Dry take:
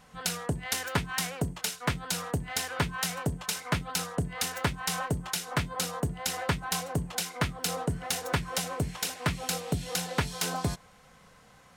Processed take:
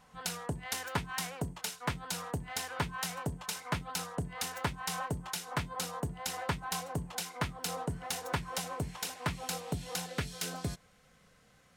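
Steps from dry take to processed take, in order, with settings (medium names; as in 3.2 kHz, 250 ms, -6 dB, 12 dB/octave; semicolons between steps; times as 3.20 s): peaking EQ 920 Hz +4.5 dB 0.62 oct, from 10.06 s -8 dB; trim -6 dB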